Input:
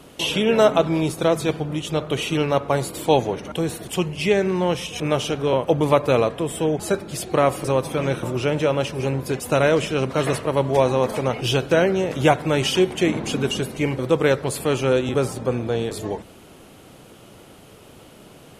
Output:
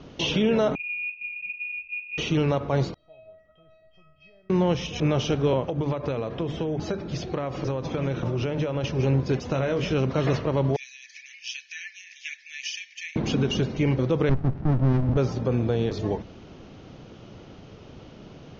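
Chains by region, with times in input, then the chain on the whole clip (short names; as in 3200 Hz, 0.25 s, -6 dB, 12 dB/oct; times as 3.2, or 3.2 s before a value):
0.75–2.18 inverse Chebyshev band-stop 640–1500 Hz, stop band 80 dB + inverted band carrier 2600 Hz
2.94–4.5 compressor 2.5:1, threshold -20 dBFS + air absorption 370 m + resonator 640 Hz, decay 0.52 s, mix 100%
5.68–8.84 notches 50/100/150/200/250/300/350 Hz + compressor 12:1, threshold -23 dBFS + decimation joined by straight lines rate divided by 2×
9.47–9.93 doubler 23 ms -6.5 dB + compressor, threshold -21 dBFS
10.76–13.16 rippled Chebyshev high-pass 1700 Hz, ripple 9 dB + phaser 1.6 Hz, delay 3.6 ms, feedback 22%
14.29–15.17 LPF 1300 Hz 24 dB/oct + running maximum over 65 samples
whole clip: steep low-pass 6400 Hz 96 dB/oct; low shelf 310 Hz +9 dB; limiter -10.5 dBFS; gain -3.5 dB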